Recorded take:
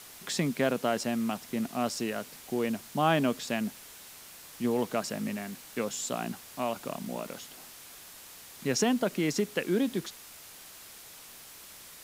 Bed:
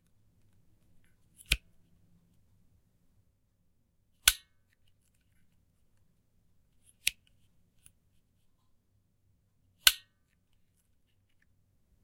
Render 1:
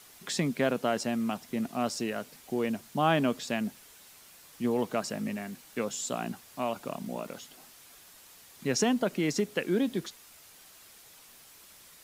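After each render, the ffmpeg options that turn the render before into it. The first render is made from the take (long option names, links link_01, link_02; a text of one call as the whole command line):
ffmpeg -i in.wav -af "afftdn=noise_reduction=6:noise_floor=-49" out.wav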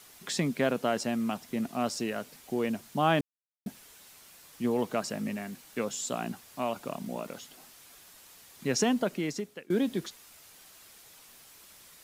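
ffmpeg -i in.wav -filter_complex "[0:a]asplit=4[link_01][link_02][link_03][link_04];[link_01]atrim=end=3.21,asetpts=PTS-STARTPTS,afade=type=out:start_time=3.206:duration=0.004:curve=hsin[link_05];[link_02]atrim=start=3.21:end=3.66,asetpts=PTS-STARTPTS,volume=0[link_06];[link_03]atrim=start=3.66:end=9.7,asetpts=PTS-STARTPTS,afade=type=in:duration=0.004:curve=hsin,afade=type=out:start_time=5.34:duration=0.7:silence=0.0630957[link_07];[link_04]atrim=start=9.7,asetpts=PTS-STARTPTS,afade=type=in:duration=0.004:curve=hsin:silence=0.0630957[link_08];[link_05][link_06][link_07][link_08]concat=n=4:v=0:a=1" out.wav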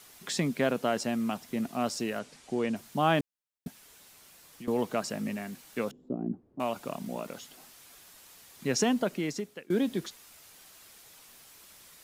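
ffmpeg -i in.wav -filter_complex "[0:a]asettb=1/sr,asplit=3[link_01][link_02][link_03];[link_01]atrim=end=2.194[link_04];[link_02]atrim=start=2.19:end=2.76,asetpts=PTS-STARTPTS,afade=type=in:duration=0.004:curve=qsin,afade=type=out:start_time=0.566:duration=0.004:curve=qsin,lowpass=frequency=9100:width=0.5412,lowpass=frequency=9100:width=1.3066[link_05];[link_03]atrim=start=2.756[link_06];[link_04][link_05]acrossfade=duration=0.004:curve1=hsin:curve2=qsin[link_07];[link_07][link_06]acrossfade=duration=0.004:curve1=qsin:curve2=hsin,asettb=1/sr,asplit=3[link_08][link_09][link_10];[link_08]atrim=end=3.674[link_11];[link_09]atrim=start=3.67:end=4.68,asetpts=PTS-STARTPTS,afade=type=in:duration=0.004:curve=qsin,afade=type=out:start_time=1.006:duration=0.004:curve=qsin,acrossover=split=280|700[link_12][link_13][link_14];[link_12]acompressor=threshold=-49dB:ratio=4[link_15];[link_13]acompressor=threshold=-56dB:ratio=4[link_16];[link_14]acompressor=threshold=-52dB:ratio=4[link_17];[link_15][link_16][link_17]amix=inputs=3:normalize=0[link_18];[link_10]atrim=start=4.676[link_19];[link_11][link_18]acrossfade=duration=0.004:curve1=hsin:curve2=qsin[link_20];[link_20][link_19]acrossfade=duration=0.004:curve1=qsin:curve2=hsin,asettb=1/sr,asplit=3[link_21][link_22][link_23];[link_21]atrim=end=5.914[link_24];[link_22]atrim=start=5.91:end=6.6,asetpts=PTS-STARTPTS,afade=type=in:duration=0.004:curve=qsin,afade=type=out:start_time=0.686:duration=0.004:curve=qsin,lowpass=frequency=330:width_type=q:width=2.4[link_25];[link_23]atrim=start=6.596[link_26];[link_24][link_25]acrossfade=duration=0.004:curve1=hsin:curve2=qsin[link_27];[link_27][link_26]acrossfade=duration=0.004:curve1=qsin:curve2=hsin" out.wav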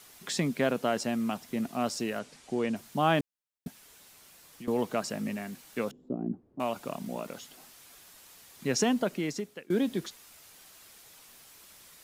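ffmpeg -i in.wav -af anull out.wav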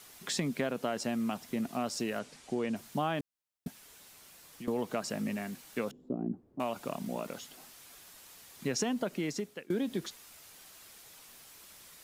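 ffmpeg -i in.wav -af "acompressor=threshold=-29dB:ratio=4" out.wav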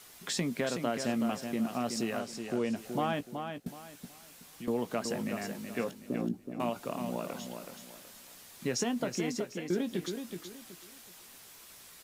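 ffmpeg -i in.wav -filter_complex "[0:a]asplit=2[link_01][link_02];[link_02]adelay=17,volume=-11.5dB[link_03];[link_01][link_03]amix=inputs=2:normalize=0,aecho=1:1:374|748|1122|1496:0.447|0.13|0.0376|0.0109" out.wav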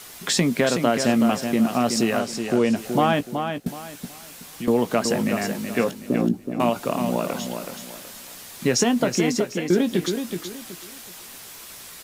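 ffmpeg -i in.wav -af "volume=12dB" out.wav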